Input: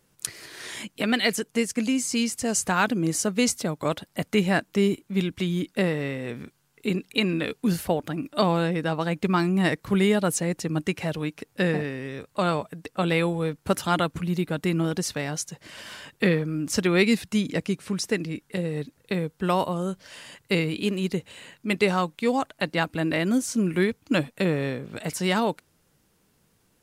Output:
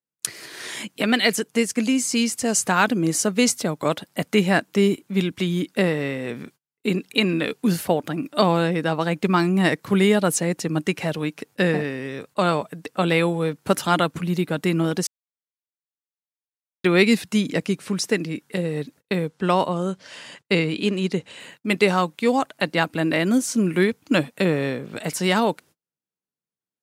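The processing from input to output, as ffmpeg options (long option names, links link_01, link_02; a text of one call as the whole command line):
ffmpeg -i in.wav -filter_complex "[0:a]asettb=1/sr,asplit=3[link_01][link_02][link_03];[link_01]atrim=end=19.284[link_04];[link_02]atrim=start=19.28:end=21.4,asetpts=PTS-STARTPTS,afade=type=in:duration=0.004:curve=qsin,afade=type=out:start_time=2.116:duration=0.004:curve=qsin,lowpass=7900[link_05];[link_03]atrim=start=21.396[link_06];[link_04][link_05]acrossfade=duration=0.004:curve1=hsin:curve2=qsin[link_07];[link_07][link_06]acrossfade=duration=0.004:curve1=qsin:curve2=hsin,asplit=3[link_08][link_09][link_10];[link_08]atrim=end=15.07,asetpts=PTS-STARTPTS,afade=type=out:start_time=15.066:duration=0.004:curve=hsin[link_11];[link_09]atrim=start=15.07:end=16.84,asetpts=PTS-STARTPTS,volume=0[link_12];[link_10]atrim=start=16.84,asetpts=PTS-STARTPTS,afade=type=in:duration=0.004:curve=hsin[link_13];[link_11][link_12][link_13]concat=n=3:v=0:a=1,highpass=140,agate=range=-34dB:threshold=-50dB:ratio=16:detection=peak,volume=4dB" out.wav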